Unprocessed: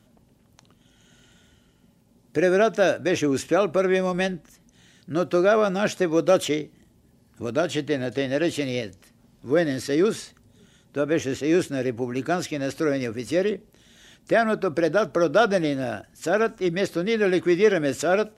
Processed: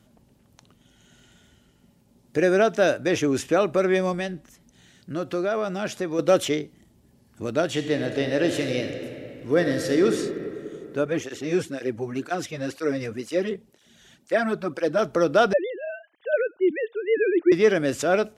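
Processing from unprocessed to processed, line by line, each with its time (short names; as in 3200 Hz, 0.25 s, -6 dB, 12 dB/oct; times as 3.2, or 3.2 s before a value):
4.14–6.19 compressor 1.5:1, threshold -32 dBFS
7.68–10.07 reverb throw, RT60 2.9 s, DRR 5 dB
11.05–14.99 tape flanging out of phase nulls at 2 Hz, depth 3.8 ms
15.53–17.52 sine-wave speech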